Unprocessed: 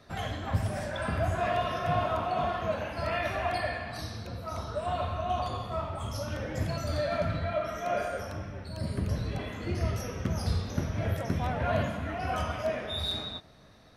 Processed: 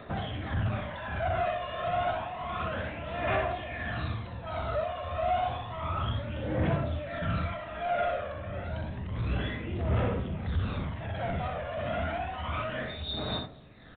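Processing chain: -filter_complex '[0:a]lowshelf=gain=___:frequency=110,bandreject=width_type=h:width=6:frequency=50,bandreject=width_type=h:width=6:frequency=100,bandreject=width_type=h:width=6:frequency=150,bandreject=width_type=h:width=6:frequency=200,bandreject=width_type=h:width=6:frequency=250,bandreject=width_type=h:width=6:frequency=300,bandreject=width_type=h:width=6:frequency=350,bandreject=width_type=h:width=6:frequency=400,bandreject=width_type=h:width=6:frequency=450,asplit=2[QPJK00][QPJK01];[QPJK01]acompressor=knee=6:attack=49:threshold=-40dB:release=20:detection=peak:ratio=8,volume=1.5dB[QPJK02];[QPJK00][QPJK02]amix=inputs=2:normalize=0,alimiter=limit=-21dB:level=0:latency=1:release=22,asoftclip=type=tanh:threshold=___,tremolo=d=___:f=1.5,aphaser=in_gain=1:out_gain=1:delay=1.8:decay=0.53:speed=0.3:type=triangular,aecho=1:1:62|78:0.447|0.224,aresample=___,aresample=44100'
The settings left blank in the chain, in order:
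-4.5, -29dB, 0.53, 8000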